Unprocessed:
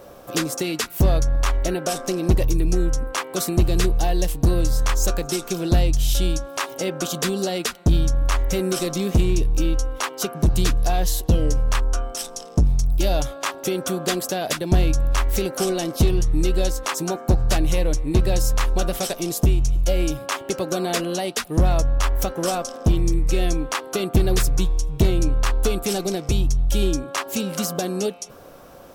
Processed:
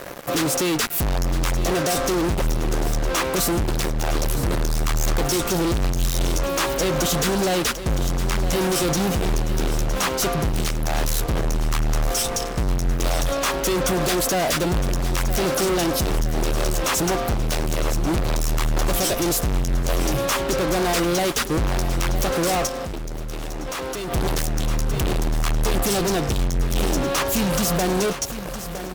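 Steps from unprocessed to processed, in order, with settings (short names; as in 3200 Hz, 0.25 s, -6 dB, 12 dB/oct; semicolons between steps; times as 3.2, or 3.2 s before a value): fuzz box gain 37 dB, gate -42 dBFS; on a send: feedback echo 0.962 s, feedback 55%, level -12 dB; 22.67–24.12 on the sum: level quantiser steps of 11 dB; gain -6.5 dB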